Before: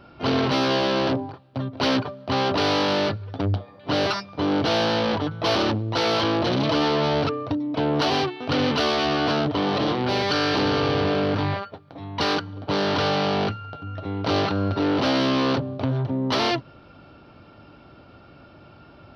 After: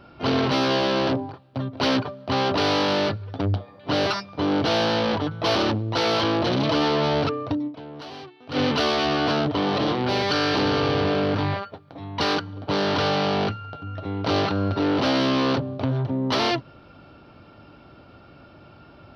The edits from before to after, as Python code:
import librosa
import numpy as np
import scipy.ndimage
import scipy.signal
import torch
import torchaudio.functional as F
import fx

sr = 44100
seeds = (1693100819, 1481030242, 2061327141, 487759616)

y = fx.edit(x, sr, fx.fade_down_up(start_s=7.67, length_s=0.9, db=-16.5, fade_s=0.35, curve='exp'), tone=tone)